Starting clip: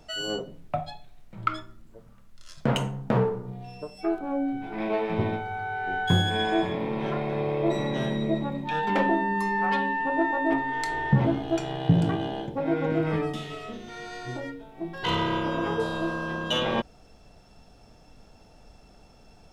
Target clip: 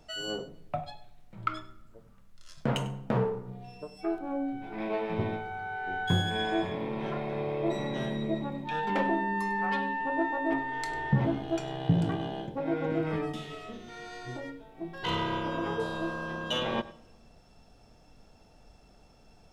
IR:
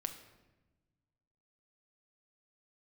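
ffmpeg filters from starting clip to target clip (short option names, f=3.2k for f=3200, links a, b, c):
-filter_complex "[0:a]asplit=2[a][b];[1:a]atrim=start_sample=2205,adelay=99[c];[b][c]afir=irnorm=-1:irlink=0,volume=-16dB[d];[a][d]amix=inputs=2:normalize=0,volume=-4.5dB"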